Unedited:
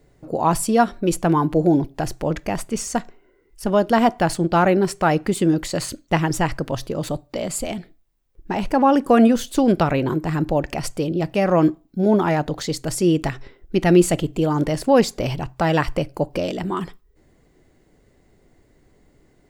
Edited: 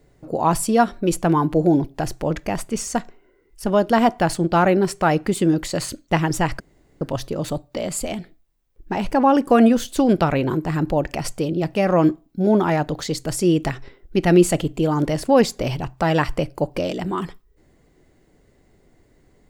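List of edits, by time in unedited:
6.60 s: insert room tone 0.41 s

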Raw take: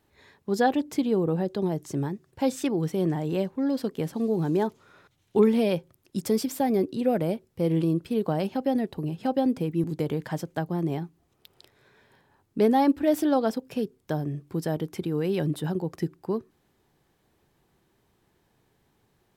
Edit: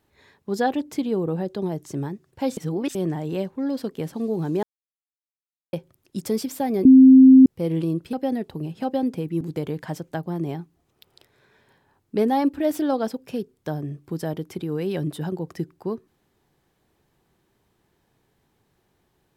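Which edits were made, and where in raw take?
2.57–2.95 s: reverse
4.63–5.73 s: mute
6.85–7.46 s: bleep 262 Hz -6 dBFS
8.13–8.56 s: delete

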